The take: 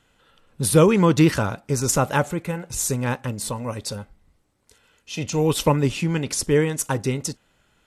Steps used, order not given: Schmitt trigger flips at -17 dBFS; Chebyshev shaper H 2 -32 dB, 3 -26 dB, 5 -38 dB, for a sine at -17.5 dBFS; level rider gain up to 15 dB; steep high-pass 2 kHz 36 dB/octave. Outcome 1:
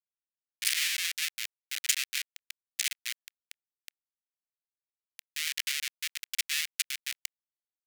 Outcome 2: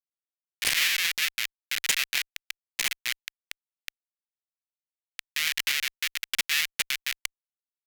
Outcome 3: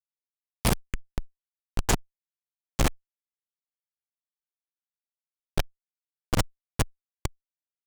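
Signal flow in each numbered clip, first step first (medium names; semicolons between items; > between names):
Schmitt trigger > level rider > Chebyshev shaper > steep high-pass; Schmitt trigger > level rider > steep high-pass > Chebyshev shaper; steep high-pass > Schmitt trigger > level rider > Chebyshev shaper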